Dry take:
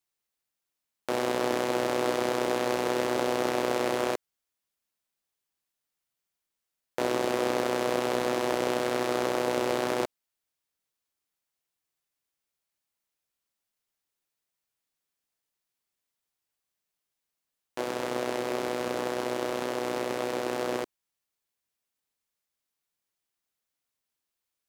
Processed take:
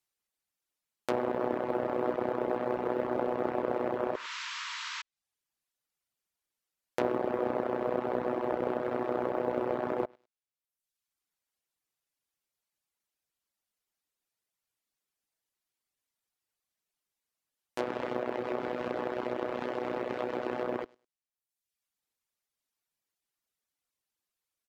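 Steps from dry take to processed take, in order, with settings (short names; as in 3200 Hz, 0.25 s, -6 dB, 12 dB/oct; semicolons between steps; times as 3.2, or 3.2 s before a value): on a send: feedback echo 0.102 s, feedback 18%, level -19 dB; on the sum: reverb removal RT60 0.92 s; painted sound noise, 4.14–5.02, 900–7900 Hz -35 dBFS; treble ducked by the level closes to 1300 Hz, closed at -27 dBFS; short-mantissa float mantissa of 6-bit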